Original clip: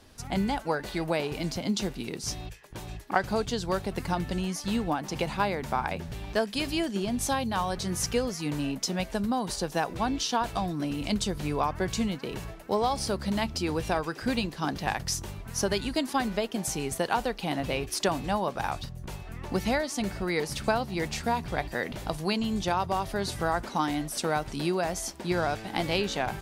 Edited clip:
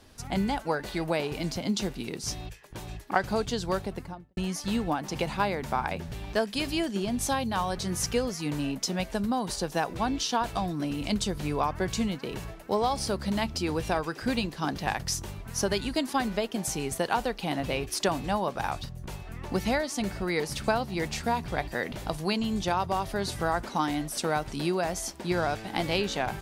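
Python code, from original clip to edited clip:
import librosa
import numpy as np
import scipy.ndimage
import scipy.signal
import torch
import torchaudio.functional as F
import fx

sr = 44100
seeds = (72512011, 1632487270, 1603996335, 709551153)

y = fx.studio_fade_out(x, sr, start_s=3.7, length_s=0.67)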